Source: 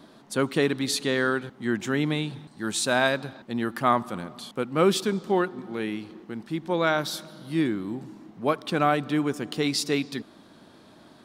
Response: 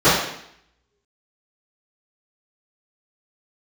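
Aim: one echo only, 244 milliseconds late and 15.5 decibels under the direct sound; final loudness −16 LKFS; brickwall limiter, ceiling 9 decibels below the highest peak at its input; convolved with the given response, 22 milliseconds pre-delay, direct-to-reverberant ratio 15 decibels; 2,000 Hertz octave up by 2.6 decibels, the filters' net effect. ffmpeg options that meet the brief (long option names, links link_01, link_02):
-filter_complex "[0:a]equalizer=frequency=2000:width_type=o:gain=3.5,alimiter=limit=-14.5dB:level=0:latency=1,aecho=1:1:244:0.168,asplit=2[link_01][link_02];[1:a]atrim=start_sample=2205,adelay=22[link_03];[link_02][link_03]afir=irnorm=-1:irlink=0,volume=-41dB[link_04];[link_01][link_04]amix=inputs=2:normalize=0,volume=12dB"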